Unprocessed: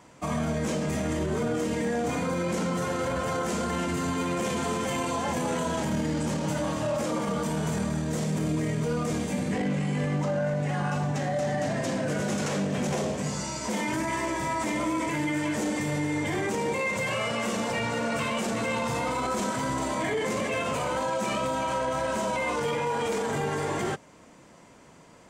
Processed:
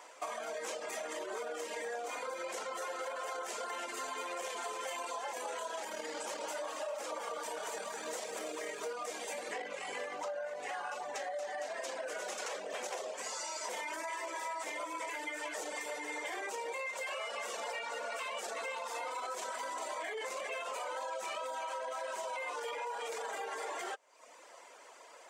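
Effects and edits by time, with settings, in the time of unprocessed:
6.1–8.93 lo-fi delay 0.201 s, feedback 55%, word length 10-bit, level -9 dB
whole clip: HPF 490 Hz 24 dB/oct; reverb removal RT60 0.71 s; compressor, threshold -40 dBFS; gain +2.5 dB

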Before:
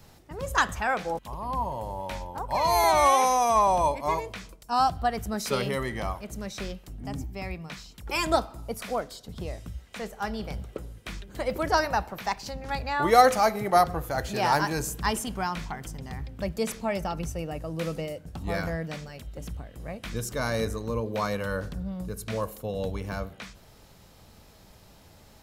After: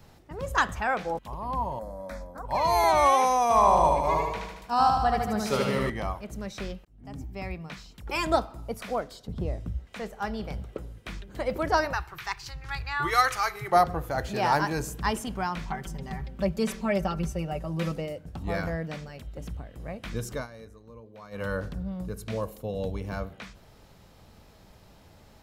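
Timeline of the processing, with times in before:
1.79–2.45 fixed phaser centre 580 Hz, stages 8
3.43–5.9 feedback echo 75 ms, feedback 59%, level -3 dB
6.85–7.4 fade in
9.27–9.87 tilt shelf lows +5.5 dB, about 880 Hz
11.93–13.72 EQ curve 150 Hz 0 dB, 220 Hz -29 dB, 350 Hz -4 dB, 570 Hz -19 dB, 1200 Hz +2 dB
15.67–17.92 comb 5.2 ms, depth 83%
20.35–21.43 dip -18 dB, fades 0.12 s
22.14–23.13 dynamic EQ 1400 Hz, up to -5 dB, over -49 dBFS, Q 1.1
whole clip: bell 12000 Hz -6.5 dB 2.2 oct

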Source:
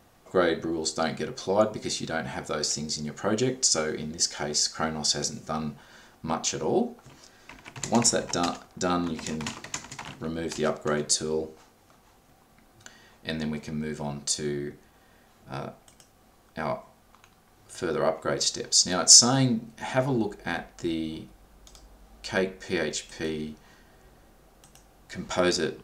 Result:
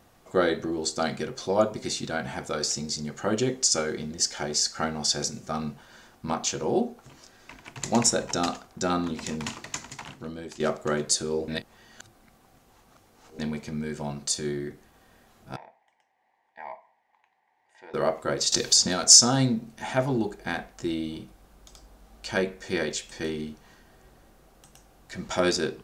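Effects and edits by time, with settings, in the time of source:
9.88–10.6 fade out, to -11 dB
11.48–13.39 reverse
15.56–17.94 double band-pass 1300 Hz, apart 1.1 oct
18.52–19.04 three-band squash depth 100%

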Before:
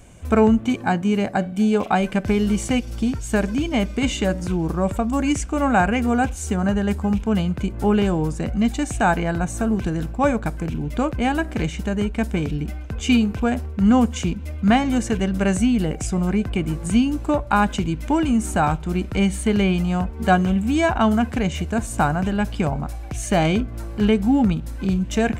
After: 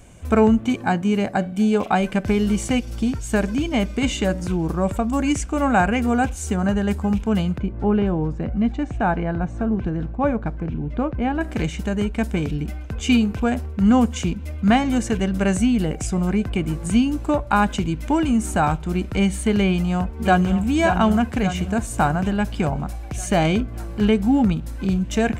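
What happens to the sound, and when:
7.58–11.41 tape spacing loss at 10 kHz 31 dB
19.67–20.59 echo throw 0.58 s, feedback 60%, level -8 dB

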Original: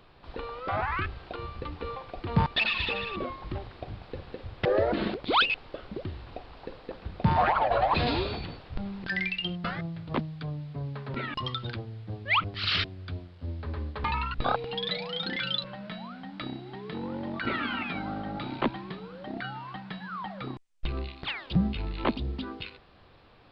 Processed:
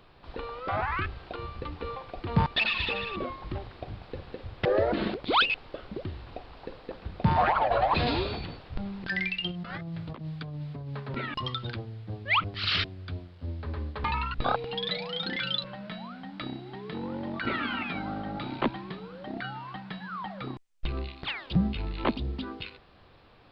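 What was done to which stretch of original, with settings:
9.51–11 negative-ratio compressor -37 dBFS

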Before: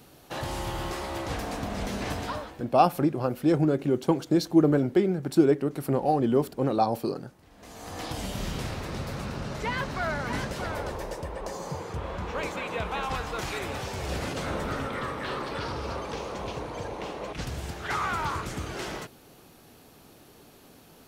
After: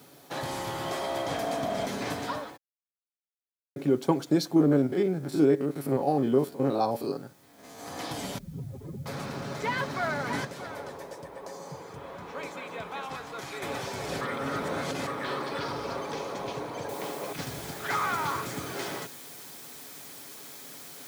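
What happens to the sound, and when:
0.86–1.86 small resonant body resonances 650/3200 Hz, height 12 dB
2.57–3.76 mute
4.56–7.79 stepped spectrum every 50 ms
8.38–9.06 spectral contrast raised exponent 3
10.45–13.62 gain -6 dB
14.21–15.07 reverse
16.89 noise floor step -64 dB -46 dB
whole clip: HPF 150 Hz 12 dB/oct; notch 2800 Hz, Q 13; comb 7.2 ms, depth 31%

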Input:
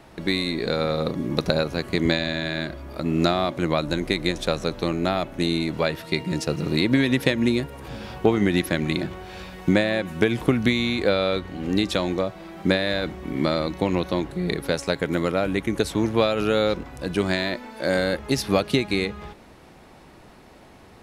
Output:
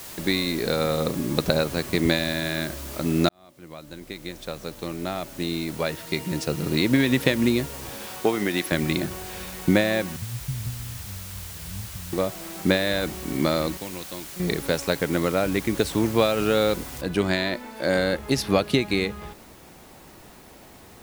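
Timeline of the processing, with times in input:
3.29–7.09 fade in
7.89–8.72 HPF 410 Hz 6 dB/oct
10.16–12.13 inverse Chebyshev band-stop 330–7200 Hz, stop band 50 dB
13.77–14.4 pre-emphasis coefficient 0.8
17.01 noise floor step -40 dB -54 dB

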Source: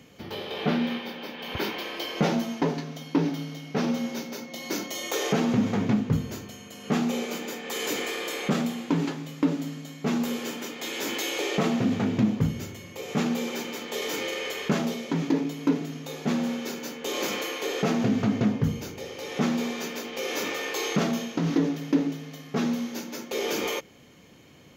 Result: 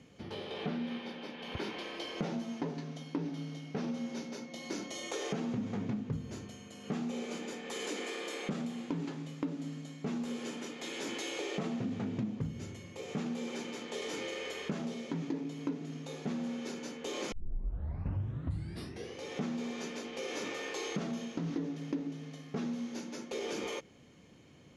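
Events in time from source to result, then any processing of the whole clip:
7.85–8.49 steep high-pass 180 Hz
17.32 tape start 1.89 s
whole clip: steep low-pass 11000 Hz 72 dB/oct; low shelf 430 Hz +5 dB; compressor 3:1, threshold -26 dBFS; gain -8.5 dB

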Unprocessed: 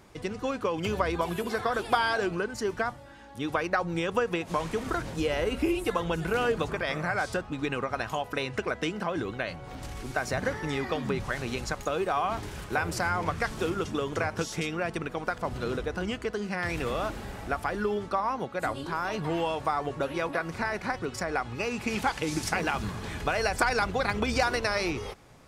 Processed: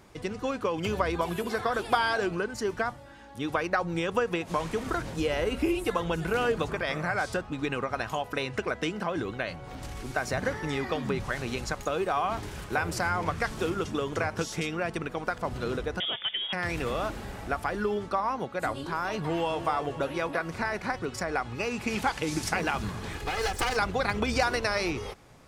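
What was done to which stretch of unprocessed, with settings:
16–16.53 inverted band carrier 3500 Hz
19.24–19.65 echo throw 0.26 s, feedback 50%, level -10 dB
23.13–23.77 minimum comb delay 2.4 ms

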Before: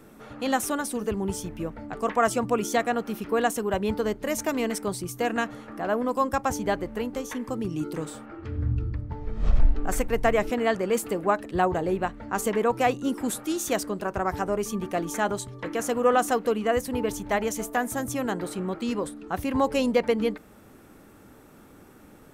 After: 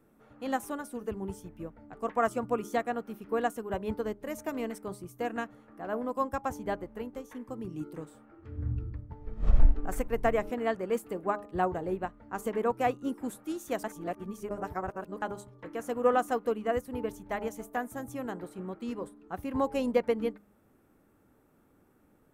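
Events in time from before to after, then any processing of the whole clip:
13.84–15.22 reverse
whole clip: bell 4800 Hz -7.5 dB 2.2 oct; de-hum 204.6 Hz, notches 7; upward expander 1.5:1, over -39 dBFS

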